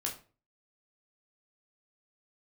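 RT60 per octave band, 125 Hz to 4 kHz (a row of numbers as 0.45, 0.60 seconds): 0.50, 0.45, 0.40, 0.35, 0.30, 0.25 seconds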